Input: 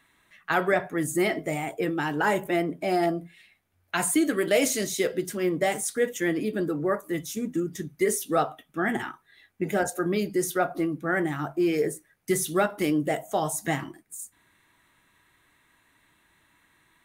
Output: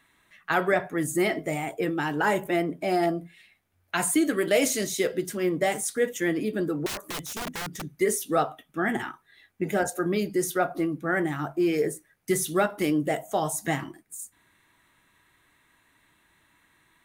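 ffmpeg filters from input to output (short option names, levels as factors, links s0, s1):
-filter_complex "[0:a]asettb=1/sr,asplit=3[s0][s1][s2];[s0]atrim=end=6.864[s3];[s1]atrim=start=6.86:end=7.85,asetpts=PTS-STARTPTS,afade=t=in:d=0.004:c=qsin,afade=t=out:st=0.986:d=0.004:c=qsin,aeval=exprs='(mod(25.1*val(0)+1,2)-1)/25.1':c=same[s4];[s2]atrim=start=7.846[s5];[s3][s4]acrossfade=d=0.004:c1=hsin:c2=qsin[s6];[s6][s5]acrossfade=d=0.004:c1=qsin:c2=hsin"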